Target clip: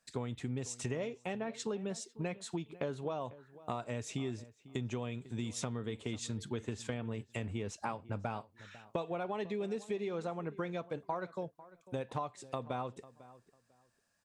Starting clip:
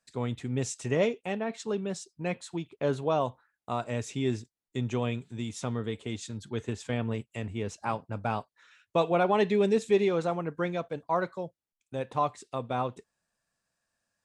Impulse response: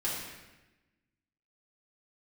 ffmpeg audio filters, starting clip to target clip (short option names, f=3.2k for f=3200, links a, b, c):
-filter_complex "[0:a]acompressor=threshold=-37dB:ratio=12,asplit=2[a][b];[b]adelay=498,lowpass=f=2.3k:p=1,volume=-18dB,asplit=2[c][d];[d]adelay=498,lowpass=f=2.3k:p=1,volume=0.22[e];[c][e]amix=inputs=2:normalize=0[f];[a][f]amix=inputs=2:normalize=0,volume=3dB"